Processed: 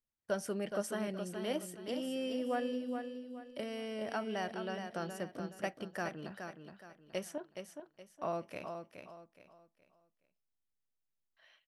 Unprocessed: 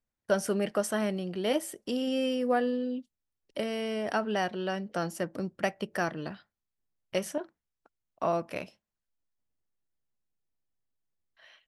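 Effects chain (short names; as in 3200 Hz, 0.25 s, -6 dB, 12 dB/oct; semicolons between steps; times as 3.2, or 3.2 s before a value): feedback echo 0.42 s, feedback 33%, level -7 dB; gain -8.5 dB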